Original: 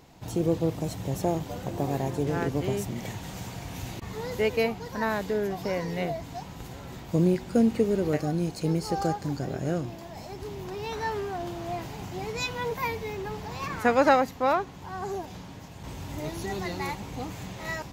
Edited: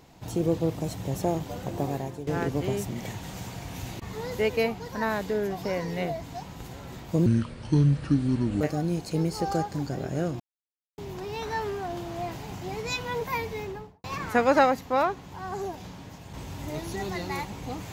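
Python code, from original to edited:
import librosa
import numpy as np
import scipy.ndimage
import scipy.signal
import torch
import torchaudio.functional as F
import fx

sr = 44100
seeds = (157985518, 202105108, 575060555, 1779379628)

y = fx.studio_fade_out(x, sr, start_s=13.1, length_s=0.44)
y = fx.edit(y, sr, fx.fade_out_to(start_s=1.82, length_s=0.45, floor_db=-13.0),
    fx.speed_span(start_s=7.26, length_s=0.85, speed=0.63),
    fx.silence(start_s=9.9, length_s=0.58), tone=tone)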